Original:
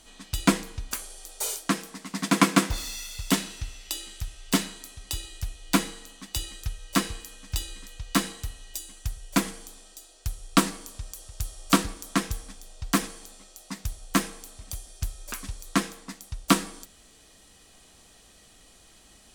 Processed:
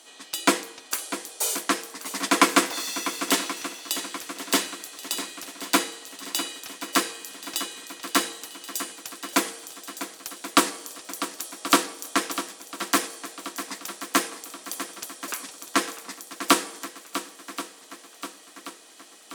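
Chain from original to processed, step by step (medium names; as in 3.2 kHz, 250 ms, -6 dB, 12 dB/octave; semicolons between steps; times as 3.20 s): high-pass 310 Hz 24 dB/octave; on a send: shuffle delay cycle 1080 ms, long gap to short 1.5:1, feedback 49%, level -12 dB; on the sum: trim +4 dB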